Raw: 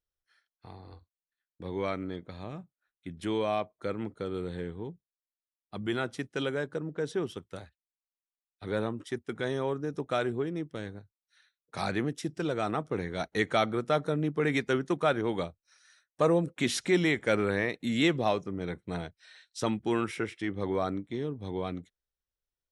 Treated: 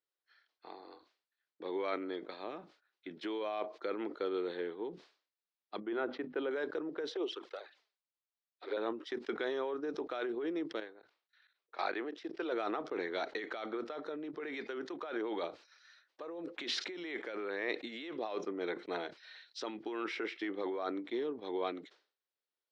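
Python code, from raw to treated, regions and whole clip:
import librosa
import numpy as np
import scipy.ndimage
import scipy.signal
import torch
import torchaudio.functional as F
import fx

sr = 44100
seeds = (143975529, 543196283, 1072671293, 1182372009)

y = fx.chain(x, sr, fx.spacing_loss(db_at_10k=44),
    fx.hum_notches(base_hz=50, count=5), at=(5.8, 6.51))
y = fx.chain(y, sr, fx.highpass(hz=310.0, slope=24),
    fx.env_flanger(rest_ms=6.0, full_db=-31.0), at=(7.1, 8.77))
y = fx.chain(y, sr, fx.level_steps(step_db=17),
    fx.bass_treble(bass_db=-11, treble_db=-8), at=(10.8, 12.52))
y = fx.over_compress(y, sr, threshold_db=-33.0, ratio=-1.0)
y = scipy.signal.sosfilt(scipy.signal.cheby1(3, 1.0, [330.0, 4600.0], 'bandpass', fs=sr, output='sos'), y)
y = fx.sustainer(y, sr, db_per_s=140.0)
y = y * librosa.db_to_amplitude(-2.0)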